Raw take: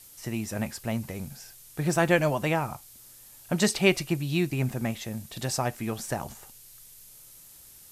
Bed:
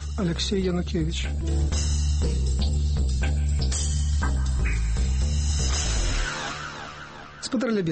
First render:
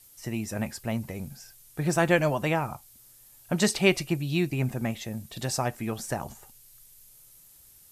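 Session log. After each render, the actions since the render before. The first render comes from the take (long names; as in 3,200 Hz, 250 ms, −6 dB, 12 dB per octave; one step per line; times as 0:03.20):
broadband denoise 6 dB, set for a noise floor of −51 dBFS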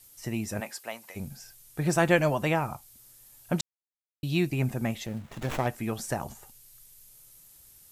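0:00.59–0:01.15: high-pass filter 410 Hz → 960 Hz
0:03.61–0:04.23: silence
0:05.06–0:05.67: windowed peak hold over 9 samples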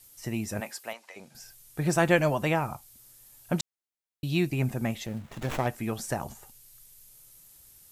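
0:00.93–0:01.35: band-pass filter 430–6,000 Hz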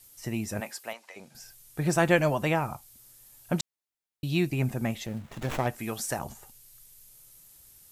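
0:05.79–0:06.19: spectral tilt +1.5 dB per octave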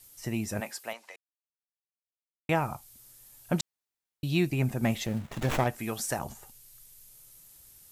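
0:01.16–0:02.49: silence
0:04.83–0:05.64: leveller curve on the samples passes 1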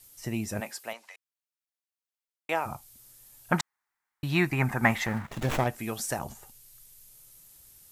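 0:01.07–0:02.65: high-pass filter 930 Hz → 440 Hz
0:03.52–0:05.27: flat-topped bell 1,300 Hz +14.5 dB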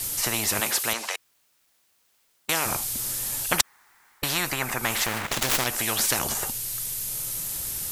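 speech leveller within 5 dB 0.5 s
every bin compressed towards the loudest bin 4 to 1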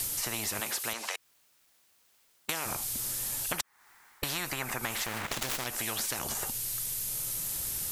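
downward compressor 5 to 1, threshold −31 dBFS, peak gain reduction 14.5 dB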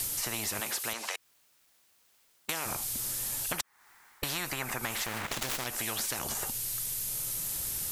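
soft clipping −17 dBFS, distortion −29 dB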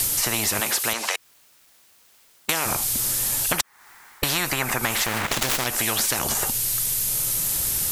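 level +10.5 dB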